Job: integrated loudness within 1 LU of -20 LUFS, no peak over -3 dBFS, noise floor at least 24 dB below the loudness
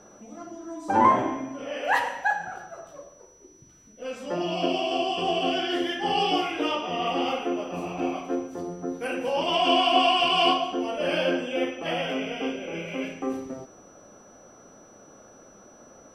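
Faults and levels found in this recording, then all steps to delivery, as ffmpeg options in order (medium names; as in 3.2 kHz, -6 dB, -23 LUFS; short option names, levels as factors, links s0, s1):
steady tone 5.9 kHz; tone level -55 dBFS; loudness -26.0 LUFS; peak level -7.0 dBFS; loudness target -20.0 LUFS
-> -af "bandreject=f=5900:w=30"
-af "volume=2,alimiter=limit=0.708:level=0:latency=1"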